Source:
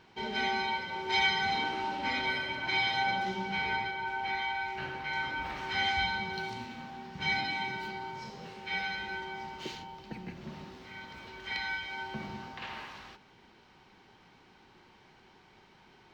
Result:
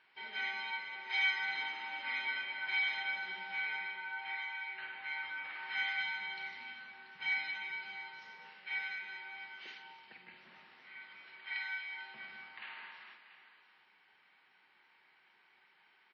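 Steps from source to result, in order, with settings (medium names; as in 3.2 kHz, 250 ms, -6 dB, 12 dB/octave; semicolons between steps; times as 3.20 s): band-pass filter 2 kHz, Q 1.6; on a send: multi-tap echo 49/199/243/448/685 ms -8.5/-18.5/-12/-14/-14 dB; on the sum: trim -3 dB; WMA 32 kbps 44.1 kHz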